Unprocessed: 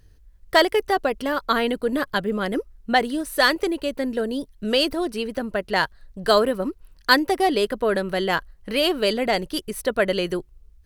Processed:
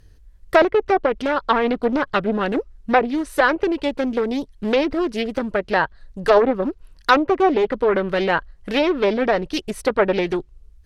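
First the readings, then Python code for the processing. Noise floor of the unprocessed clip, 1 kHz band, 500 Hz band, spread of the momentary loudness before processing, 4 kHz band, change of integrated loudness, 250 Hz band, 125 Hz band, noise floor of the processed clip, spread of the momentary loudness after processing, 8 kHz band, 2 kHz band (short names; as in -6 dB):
-53 dBFS, +3.0 dB, +3.5 dB, 9 LU, -6.0 dB, +2.5 dB, +3.5 dB, +2.5 dB, -50 dBFS, 8 LU, n/a, +0.5 dB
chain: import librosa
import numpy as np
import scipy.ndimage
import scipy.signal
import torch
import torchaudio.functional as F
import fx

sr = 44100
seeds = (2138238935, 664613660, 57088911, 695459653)

y = fx.env_lowpass_down(x, sr, base_hz=1700.0, full_db=-16.0)
y = fx.doppler_dist(y, sr, depth_ms=0.4)
y = y * 10.0 ** (3.5 / 20.0)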